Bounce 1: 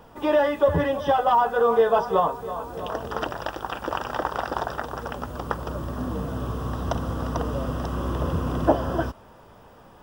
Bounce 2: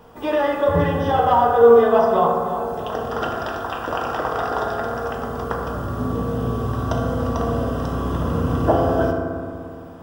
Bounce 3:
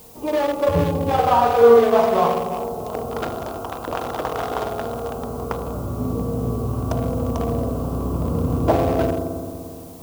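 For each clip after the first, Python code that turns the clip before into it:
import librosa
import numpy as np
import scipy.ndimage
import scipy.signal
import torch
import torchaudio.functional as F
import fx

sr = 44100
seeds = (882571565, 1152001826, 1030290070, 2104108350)

y1 = fx.rev_fdn(x, sr, rt60_s=2.1, lf_ratio=1.4, hf_ratio=0.35, size_ms=13.0, drr_db=-2.0)
y2 = fx.wiener(y1, sr, points=25)
y2 = fx.high_shelf(y2, sr, hz=4500.0, db=10.5)
y2 = fx.dmg_noise_colour(y2, sr, seeds[0], colour='blue', level_db=-47.0)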